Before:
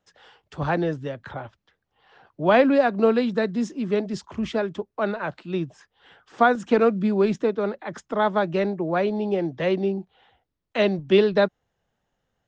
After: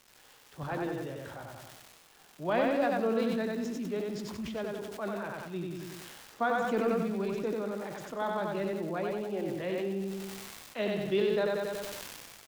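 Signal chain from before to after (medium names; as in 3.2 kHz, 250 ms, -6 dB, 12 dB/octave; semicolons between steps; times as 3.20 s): crackle 400 per s -32 dBFS; flange 0.23 Hz, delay 5.4 ms, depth 8.9 ms, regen -72%; on a send: feedback delay 93 ms, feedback 47%, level -3 dB; on the sum: decay stretcher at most 26 dB/s; trim -8.5 dB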